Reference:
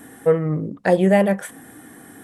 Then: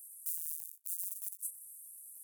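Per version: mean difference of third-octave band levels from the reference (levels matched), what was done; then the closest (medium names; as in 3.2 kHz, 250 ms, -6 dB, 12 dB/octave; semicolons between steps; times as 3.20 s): 23.0 dB: cycle switcher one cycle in 2, inverted; peak limiter -14 dBFS, peak gain reduction 9.5 dB; inverse Chebyshev high-pass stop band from 2.5 kHz, stop band 70 dB; trim +1.5 dB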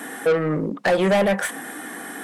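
8.0 dB: Chebyshev high-pass 170 Hz, order 3; in parallel at 0 dB: compression, threshold -23 dBFS, peak gain reduction 11.5 dB; on the sum: overdrive pedal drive 23 dB, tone 4.6 kHz, clips at -2 dBFS; trim -8.5 dB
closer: second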